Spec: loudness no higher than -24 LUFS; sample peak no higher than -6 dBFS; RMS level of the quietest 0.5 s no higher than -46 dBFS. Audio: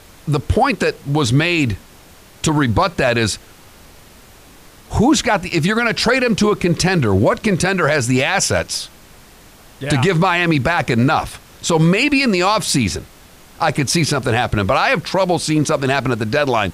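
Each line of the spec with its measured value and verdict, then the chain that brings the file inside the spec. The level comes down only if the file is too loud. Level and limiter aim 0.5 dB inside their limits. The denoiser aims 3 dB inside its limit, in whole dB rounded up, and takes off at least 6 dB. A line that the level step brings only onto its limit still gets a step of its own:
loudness -16.5 LUFS: fail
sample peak -5.0 dBFS: fail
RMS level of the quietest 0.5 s -44 dBFS: fail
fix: trim -8 dB

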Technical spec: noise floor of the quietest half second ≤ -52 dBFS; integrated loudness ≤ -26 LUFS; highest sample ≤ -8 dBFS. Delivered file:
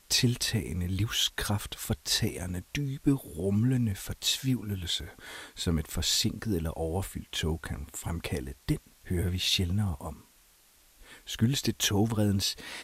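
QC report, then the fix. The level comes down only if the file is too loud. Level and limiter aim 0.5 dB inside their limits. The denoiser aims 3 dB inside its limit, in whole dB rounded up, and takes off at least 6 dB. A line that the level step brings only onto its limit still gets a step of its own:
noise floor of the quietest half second -61 dBFS: pass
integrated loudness -30.0 LUFS: pass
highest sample -13.5 dBFS: pass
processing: none needed

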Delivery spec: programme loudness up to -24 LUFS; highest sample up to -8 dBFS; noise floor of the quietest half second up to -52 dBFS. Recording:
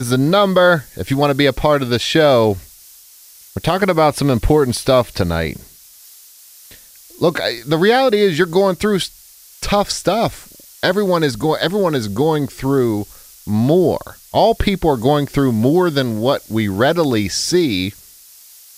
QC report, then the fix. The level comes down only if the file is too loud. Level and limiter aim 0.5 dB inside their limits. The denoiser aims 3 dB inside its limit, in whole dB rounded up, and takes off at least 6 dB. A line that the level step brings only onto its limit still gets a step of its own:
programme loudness -16.0 LUFS: fail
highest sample -2.0 dBFS: fail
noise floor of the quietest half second -44 dBFS: fail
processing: trim -8.5 dB

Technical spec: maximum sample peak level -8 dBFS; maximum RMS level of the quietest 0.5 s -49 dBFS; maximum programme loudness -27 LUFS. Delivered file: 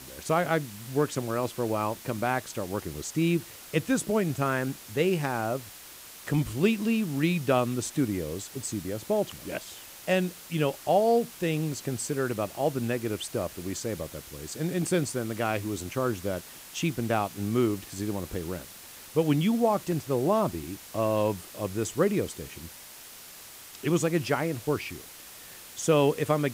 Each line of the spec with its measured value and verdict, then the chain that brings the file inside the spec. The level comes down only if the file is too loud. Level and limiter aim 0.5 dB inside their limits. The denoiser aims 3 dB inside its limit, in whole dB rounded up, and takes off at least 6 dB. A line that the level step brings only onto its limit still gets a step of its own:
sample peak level -10.5 dBFS: pass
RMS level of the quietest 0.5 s -47 dBFS: fail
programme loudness -29.0 LUFS: pass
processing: noise reduction 6 dB, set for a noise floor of -47 dBFS

